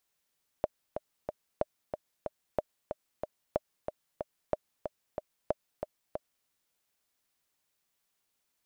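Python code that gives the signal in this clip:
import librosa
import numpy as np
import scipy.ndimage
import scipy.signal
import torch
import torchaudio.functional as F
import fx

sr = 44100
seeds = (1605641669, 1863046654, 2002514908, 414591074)

y = fx.click_track(sr, bpm=185, beats=3, bars=6, hz=610.0, accent_db=7.0, level_db=-14.0)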